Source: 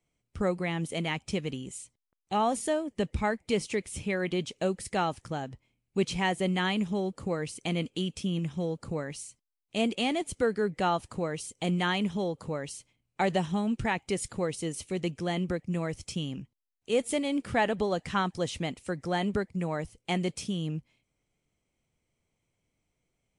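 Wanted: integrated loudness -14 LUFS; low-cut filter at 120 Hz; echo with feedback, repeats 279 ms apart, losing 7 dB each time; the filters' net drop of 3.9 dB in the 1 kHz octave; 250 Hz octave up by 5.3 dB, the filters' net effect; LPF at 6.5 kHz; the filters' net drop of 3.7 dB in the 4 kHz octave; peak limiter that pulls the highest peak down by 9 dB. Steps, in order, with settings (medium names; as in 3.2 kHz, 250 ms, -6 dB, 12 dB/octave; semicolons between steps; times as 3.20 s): high-pass 120 Hz; low-pass 6.5 kHz; peaking EQ 250 Hz +8.5 dB; peaking EQ 1 kHz -6 dB; peaking EQ 4 kHz -4.5 dB; peak limiter -21.5 dBFS; feedback delay 279 ms, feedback 45%, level -7 dB; trim +17 dB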